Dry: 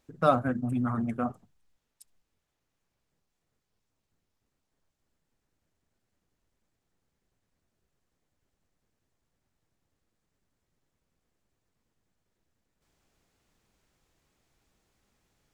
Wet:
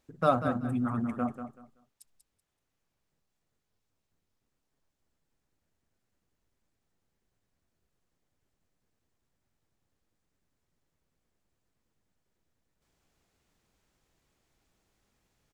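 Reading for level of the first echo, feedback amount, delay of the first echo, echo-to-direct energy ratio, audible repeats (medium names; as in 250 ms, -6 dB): -9.5 dB, 22%, 190 ms, -9.5 dB, 2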